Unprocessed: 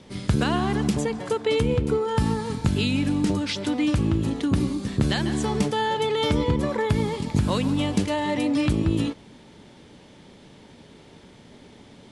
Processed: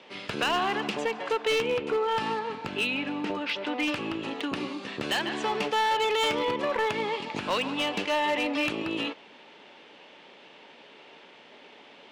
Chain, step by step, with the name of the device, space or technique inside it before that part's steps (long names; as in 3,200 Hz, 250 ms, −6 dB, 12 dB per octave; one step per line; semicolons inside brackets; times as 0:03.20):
0:02.39–0:03.79: high-shelf EQ 3,300 Hz −10 dB
megaphone (band-pass filter 550–3,400 Hz; parametric band 2,700 Hz +8 dB 0.32 octaves; hard clipping −24.5 dBFS, distortion −14 dB)
level +3 dB